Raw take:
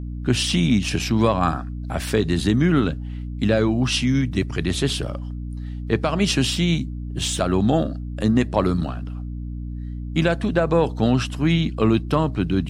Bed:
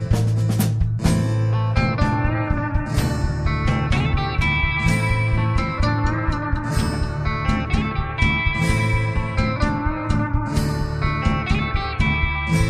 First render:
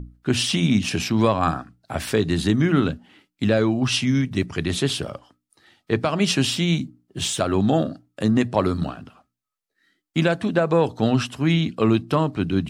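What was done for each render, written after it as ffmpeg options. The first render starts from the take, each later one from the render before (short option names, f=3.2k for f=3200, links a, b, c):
-af "bandreject=f=60:t=h:w=6,bandreject=f=120:t=h:w=6,bandreject=f=180:t=h:w=6,bandreject=f=240:t=h:w=6,bandreject=f=300:t=h:w=6"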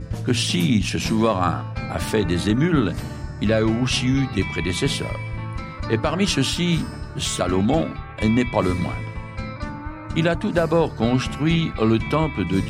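-filter_complex "[1:a]volume=-10dB[a];[0:a][a]amix=inputs=2:normalize=0"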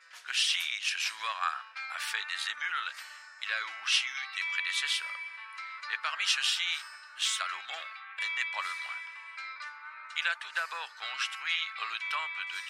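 -af "highpass=f=1.4k:w=0.5412,highpass=f=1.4k:w=1.3066,highshelf=f=5.2k:g=-10"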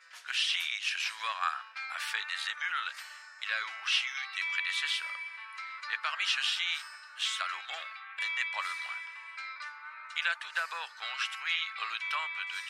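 -filter_complex "[0:a]acrossover=split=4300[a][b];[b]acompressor=threshold=-41dB:ratio=4:attack=1:release=60[c];[a][c]amix=inputs=2:normalize=0,equalizer=f=220:w=1.5:g=-9"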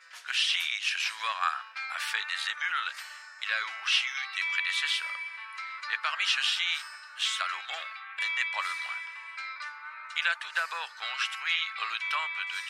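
-af "volume=3dB"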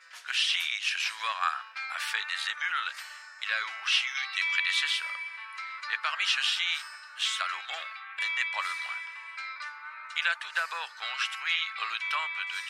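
-filter_complex "[0:a]asettb=1/sr,asplit=3[a][b][c];[a]atrim=end=4.154[d];[b]atrim=start=4.15:end=4.84,asetpts=PTS-STARTPTS,afade=t=in:d=0.004:c=qsin,afade=t=out:st=0.686:d=0.004:c=qsin,equalizer=f=4.2k:t=o:w=1.8:g=3.5[e];[c]atrim=start=4.836[f];[d][e]acrossfade=d=0.004:c1=hsin:c2=qsin[g];[g][f]acrossfade=d=0.004:c1=qsin:c2=hsin"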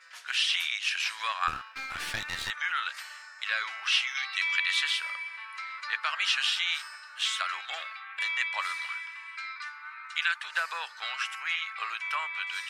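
-filter_complex "[0:a]asplit=3[a][b][c];[a]afade=t=out:st=1.47:d=0.02[d];[b]aeval=exprs='clip(val(0),-1,0.015)':c=same,afade=t=in:st=1.47:d=0.02,afade=t=out:st=2.49:d=0.02[e];[c]afade=t=in:st=2.49:d=0.02[f];[d][e][f]amix=inputs=3:normalize=0,asettb=1/sr,asplit=3[g][h][i];[g]atrim=end=8.854[j];[h]atrim=start=8.85:end=10.44,asetpts=PTS-STARTPTS,afade=t=in:d=0.004:c=qsin,afade=t=out:st=1.586:d=0.004:c=qsin,highpass=f=1k:w=0.5412,highpass=f=1k:w=1.3066[k];[i]atrim=start=10.436[l];[j][k]acrossfade=d=0.004:c1=hsin:c2=qsin[m];[m][l]acrossfade=d=0.004:c1=qsin:c2=hsin,asettb=1/sr,asplit=3[n][o][p];[n]atrim=end=11.154[q];[o]atrim=start=11.15:end=12.34,asetpts=PTS-STARTPTS,afade=t=in:d=0.004:c=qsin,afade=t=out:st=1.186:d=0.004:c=qsin,equalizer=f=3.8k:w=1.8:g=-7.5[r];[p]atrim=start=12.336[s];[q][r]acrossfade=d=0.004:c1=hsin:c2=qsin[t];[t][s]acrossfade=d=0.004:c1=qsin:c2=hsin"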